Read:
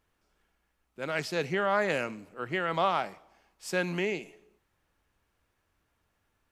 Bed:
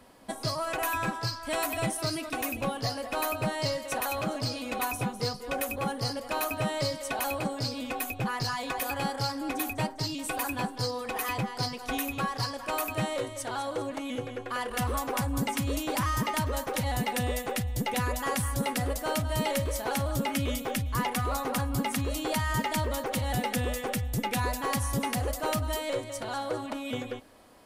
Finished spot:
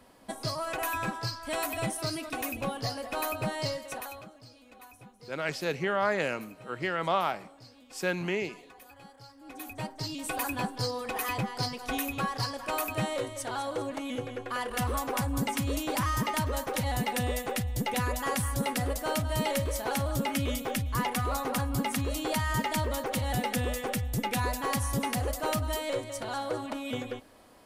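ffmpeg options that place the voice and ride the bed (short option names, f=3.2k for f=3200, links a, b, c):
-filter_complex "[0:a]adelay=4300,volume=-0.5dB[a];[1:a]volume=18.5dB,afade=t=out:st=3.63:d=0.68:silence=0.112202,afade=t=in:st=9.37:d=1.01:silence=0.0944061[b];[a][b]amix=inputs=2:normalize=0"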